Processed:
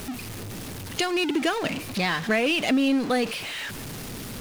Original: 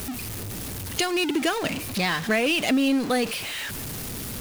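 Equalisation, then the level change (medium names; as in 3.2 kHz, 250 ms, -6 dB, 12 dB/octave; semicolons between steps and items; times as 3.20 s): peaking EQ 70 Hz -7 dB 0.77 oct; treble shelf 8.1 kHz -9.5 dB; 0.0 dB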